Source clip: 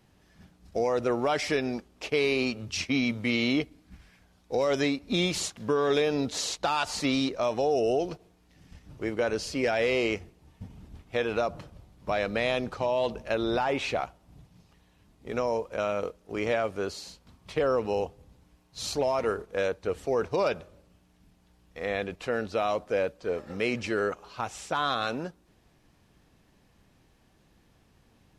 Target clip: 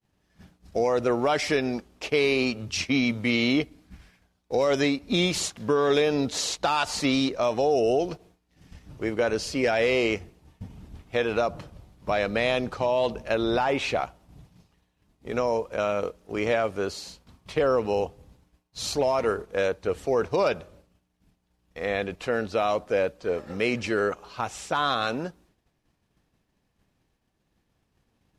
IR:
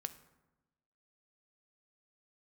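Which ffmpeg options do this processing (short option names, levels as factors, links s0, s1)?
-af "agate=range=0.0224:threshold=0.00224:ratio=3:detection=peak,volume=1.41"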